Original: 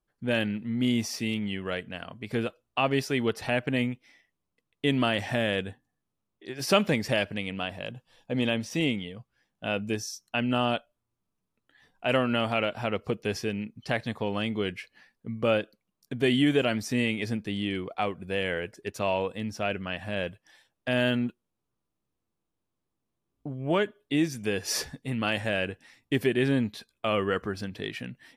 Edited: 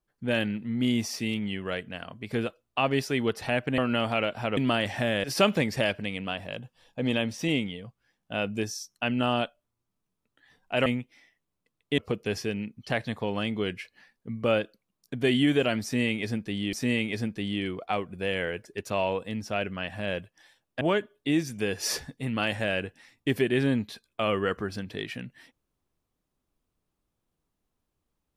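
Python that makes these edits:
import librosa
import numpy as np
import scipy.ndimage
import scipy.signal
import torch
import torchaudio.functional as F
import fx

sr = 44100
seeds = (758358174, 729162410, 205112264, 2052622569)

y = fx.edit(x, sr, fx.swap(start_s=3.78, length_s=1.12, other_s=12.18, other_length_s=0.79),
    fx.cut(start_s=5.57, length_s=0.99),
    fx.repeat(start_s=16.82, length_s=0.9, count=2),
    fx.cut(start_s=20.9, length_s=2.76), tone=tone)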